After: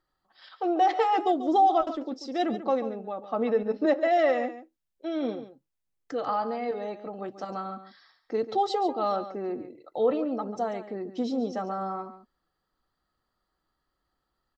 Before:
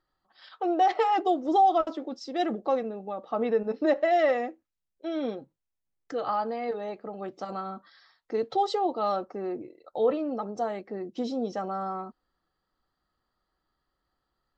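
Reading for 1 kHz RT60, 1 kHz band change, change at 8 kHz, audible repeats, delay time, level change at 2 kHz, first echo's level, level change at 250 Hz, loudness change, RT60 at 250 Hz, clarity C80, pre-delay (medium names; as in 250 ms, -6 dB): no reverb, +0.5 dB, no reading, 1, 140 ms, 0.0 dB, -12.5 dB, +1.5 dB, +0.5 dB, no reverb, no reverb, no reverb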